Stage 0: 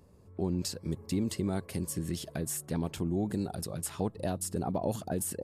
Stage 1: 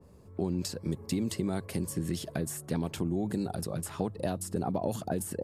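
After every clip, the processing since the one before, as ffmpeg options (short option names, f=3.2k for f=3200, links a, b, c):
-filter_complex "[0:a]bandreject=f=50:t=h:w=6,bandreject=f=100:t=h:w=6,acrossover=split=86|1900[a][b][c];[a]acompressor=threshold=-54dB:ratio=4[d];[b]acompressor=threshold=-31dB:ratio=4[e];[c]acompressor=threshold=-38dB:ratio=4[f];[d][e][f]amix=inputs=3:normalize=0,adynamicequalizer=threshold=0.00224:dfrequency=2100:dqfactor=0.7:tfrequency=2100:tqfactor=0.7:attack=5:release=100:ratio=0.375:range=1.5:mode=cutabove:tftype=highshelf,volume=4dB"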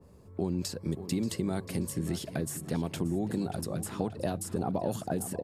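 -filter_complex "[0:a]asplit=2[a][b];[b]adelay=582,lowpass=f=4.6k:p=1,volume=-12dB,asplit=2[c][d];[d]adelay=582,lowpass=f=4.6k:p=1,volume=0.45,asplit=2[e][f];[f]adelay=582,lowpass=f=4.6k:p=1,volume=0.45,asplit=2[g][h];[h]adelay=582,lowpass=f=4.6k:p=1,volume=0.45,asplit=2[i][j];[j]adelay=582,lowpass=f=4.6k:p=1,volume=0.45[k];[a][c][e][g][i][k]amix=inputs=6:normalize=0"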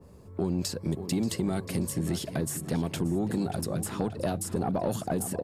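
-af "asoftclip=type=tanh:threshold=-22.5dB,volume=4dB"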